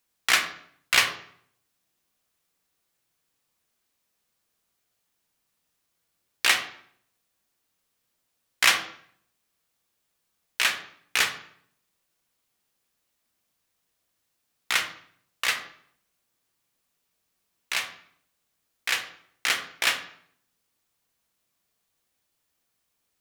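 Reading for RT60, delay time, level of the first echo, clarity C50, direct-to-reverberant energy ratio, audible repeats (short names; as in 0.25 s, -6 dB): 0.60 s, none, none, 10.0 dB, 5.0 dB, none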